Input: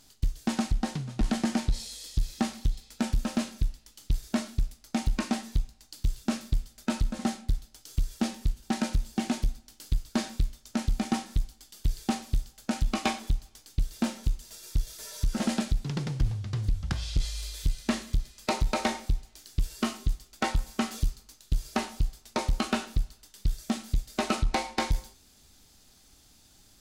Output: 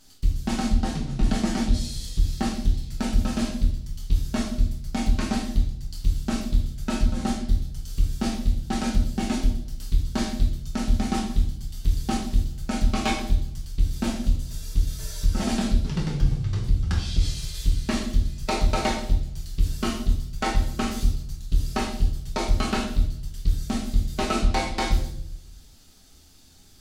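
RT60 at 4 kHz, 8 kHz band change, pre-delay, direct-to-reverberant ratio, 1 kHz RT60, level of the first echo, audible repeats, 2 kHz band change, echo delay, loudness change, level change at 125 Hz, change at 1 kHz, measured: 0.60 s, +3.0 dB, 3 ms, −2.5 dB, 0.50 s, no echo audible, no echo audible, +3.0 dB, no echo audible, +5.0 dB, +6.0 dB, +3.5 dB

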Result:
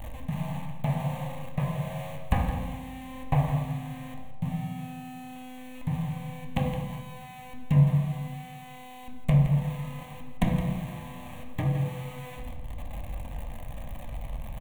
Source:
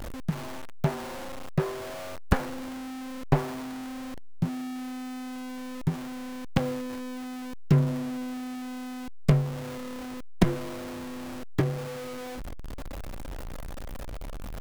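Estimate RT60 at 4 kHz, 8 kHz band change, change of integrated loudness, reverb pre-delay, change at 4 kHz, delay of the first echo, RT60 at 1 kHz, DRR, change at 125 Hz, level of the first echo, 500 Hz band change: 0.75 s, can't be measured, +1.5 dB, 3 ms, −4.0 dB, 166 ms, 0.95 s, 0.0 dB, +3.0 dB, −10.5 dB, −5.0 dB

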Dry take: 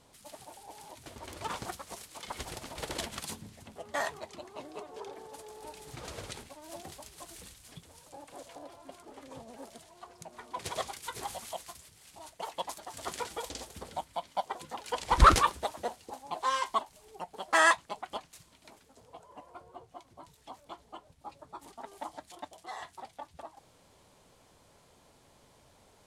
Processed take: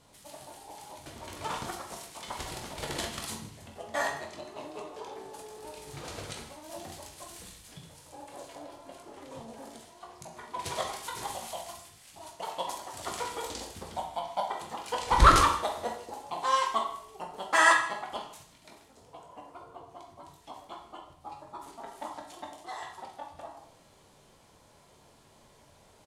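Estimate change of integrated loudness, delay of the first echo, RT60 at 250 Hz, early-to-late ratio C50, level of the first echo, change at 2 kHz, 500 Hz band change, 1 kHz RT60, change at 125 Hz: +2.0 dB, 155 ms, 0.60 s, 6.5 dB, −18.0 dB, +2.5 dB, +2.0 dB, 0.60 s, +1.5 dB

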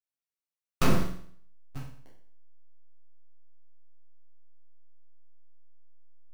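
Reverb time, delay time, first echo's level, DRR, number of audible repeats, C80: 0.55 s, no echo audible, no echo audible, −6.5 dB, no echo audible, 8.5 dB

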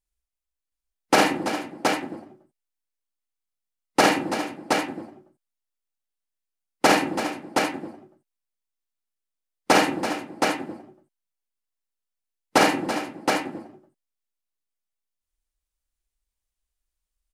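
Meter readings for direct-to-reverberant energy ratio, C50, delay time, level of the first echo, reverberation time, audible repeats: no reverb audible, no reverb audible, 51 ms, −3.5 dB, no reverb audible, 5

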